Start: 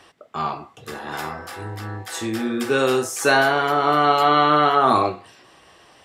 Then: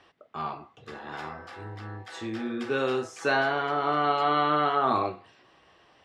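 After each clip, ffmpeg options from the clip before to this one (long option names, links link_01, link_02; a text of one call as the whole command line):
ffmpeg -i in.wav -af "lowpass=4200,volume=-8dB" out.wav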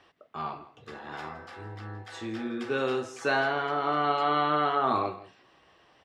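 ffmpeg -i in.wav -af "aecho=1:1:164:0.133,volume=-1.5dB" out.wav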